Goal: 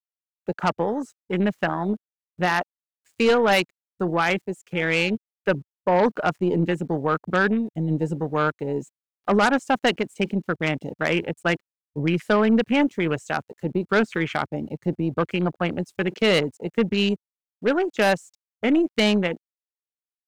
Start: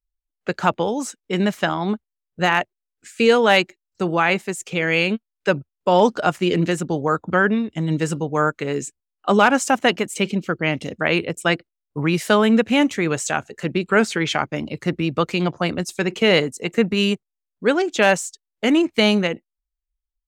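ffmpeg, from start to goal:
-af "aeval=exprs='val(0)*gte(abs(val(0)),0.01)':c=same,afwtdn=0.0447,aeval=exprs='0.708*(cos(1*acos(clip(val(0)/0.708,-1,1)))-cos(1*PI/2))+0.2*(cos(2*acos(clip(val(0)/0.708,-1,1)))-cos(2*PI/2))+0.251*(cos(5*acos(clip(val(0)/0.708,-1,1)))-cos(5*PI/2))+0.1*(cos(7*acos(clip(val(0)/0.708,-1,1)))-cos(7*PI/2))':c=same,volume=-7.5dB"

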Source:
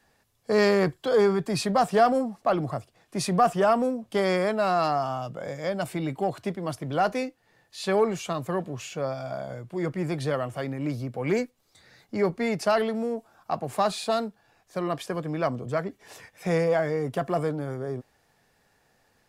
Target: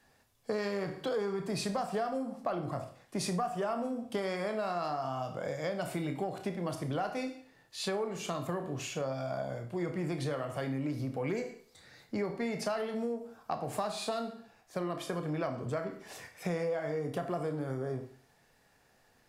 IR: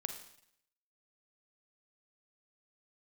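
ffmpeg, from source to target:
-filter_complex "[1:a]atrim=start_sample=2205,asetrate=70560,aresample=44100[a];[0:a][a]afir=irnorm=-1:irlink=0,acompressor=threshold=-35dB:ratio=6,volume=4dB"

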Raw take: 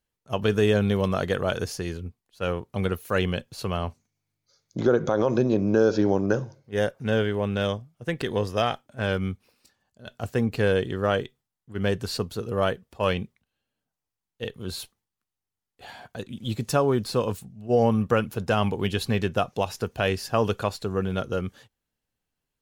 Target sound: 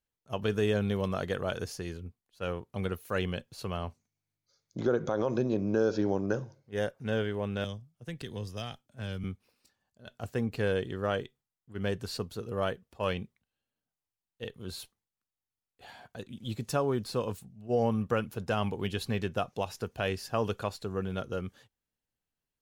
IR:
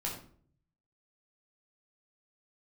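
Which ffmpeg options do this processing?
-filter_complex "[0:a]asettb=1/sr,asplit=3[a][b][c];[a]atrim=end=7.644[d];[b]atrim=start=7.64:end=9.24,asetpts=PTS-STARTPTS,afade=t=in:d=0.004:c=qsin,afade=t=out:st=1.596:d=0.004:c=qsin,acrossover=split=220|3000[e][f][g];[f]acompressor=threshold=-54dB:ratio=1.5[h];[e][h][g]amix=inputs=3:normalize=0[i];[c]atrim=start=9.236[j];[d][i]acrossfade=d=0.004:c1=hsin:c2=qsin[k];[k][j]acrossfade=d=0.004:c1=qsin:c2=hsin,volume=-7dB"

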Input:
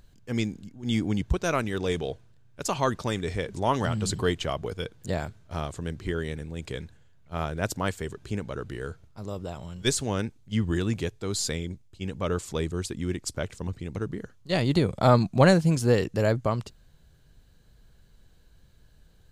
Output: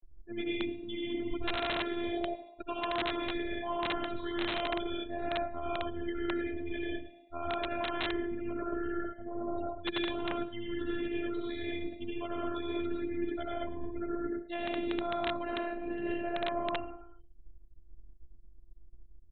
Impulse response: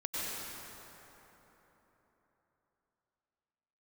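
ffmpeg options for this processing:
-filter_complex "[1:a]atrim=start_sample=2205,afade=t=out:st=0.38:d=0.01,atrim=end_sample=17199,asetrate=61740,aresample=44100[a];[0:a][a]afir=irnorm=-1:irlink=0,afftfilt=real='re*gte(hypot(re,im),0.0126)':imag='im*gte(hypot(re,im),0.0126)':win_size=1024:overlap=0.75,asplit=5[b][c][d][e][f];[c]adelay=107,afreqshift=59,volume=-18dB[g];[d]adelay=214,afreqshift=118,volume=-25.1dB[h];[e]adelay=321,afreqshift=177,volume=-32.3dB[i];[f]adelay=428,afreqshift=236,volume=-39.4dB[j];[b][g][h][i][j]amix=inputs=5:normalize=0,areverse,acompressor=threshold=-35dB:ratio=8,areverse,afftfilt=real='hypot(re,im)*cos(PI*b)':imag='0':win_size=512:overlap=0.75,acompressor=mode=upward:threshold=-58dB:ratio=2.5,aresample=8000,aeval=exprs='(mod(35.5*val(0)+1,2)-1)/35.5':c=same,aresample=44100,volume=8.5dB"

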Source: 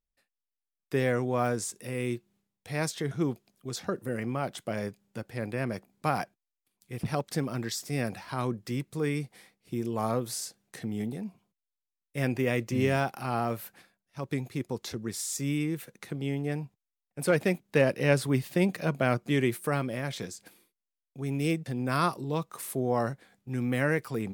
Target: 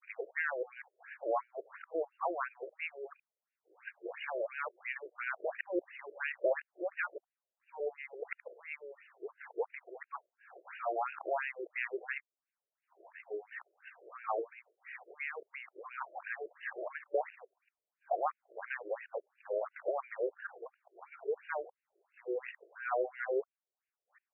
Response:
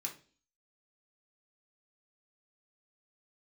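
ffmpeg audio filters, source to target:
-af "areverse,acompressor=threshold=-41dB:ratio=3,afftfilt=real='re*between(b*sr/1024,460*pow(2100/460,0.5+0.5*sin(2*PI*2.9*pts/sr))/1.41,460*pow(2100/460,0.5+0.5*sin(2*PI*2.9*pts/sr))*1.41)':imag='im*between(b*sr/1024,460*pow(2100/460,0.5+0.5*sin(2*PI*2.9*pts/sr))/1.41,460*pow(2100/460,0.5+0.5*sin(2*PI*2.9*pts/sr))*1.41)':win_size=1024:overlap=0.75,volume=12dB"

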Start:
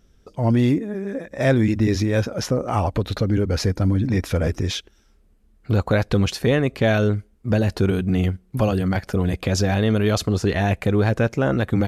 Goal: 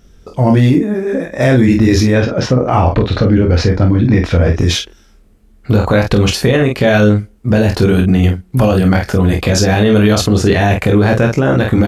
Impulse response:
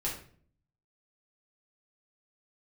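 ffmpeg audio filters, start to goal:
-filter_complex "[0:a]asettb=1/sr,asplit=3[a][b][c];[a]atrim=end=2.134[d];[b]atrim=start=2.13:end=4.59,asetpts=PTS-STARTPTS,afade=t=in:d=0.004:c=qsin,afade=t=out:st=2.456:d=0.004:c=qsin,lowpass=3.9k[e];[c]atrim=start=4.586[f];[d][e]acrossfade=d=0.004:c1=hsin:c2=qsin[g];[g][f]acrossfade=d=0.004:c1=qsin:c2=hsin,aecho=1:1:23|48:0.531|0.447,alimiter=level_in=11dB:limit=-1dB:release=50:level=0:latency=1,volume=-1dB"

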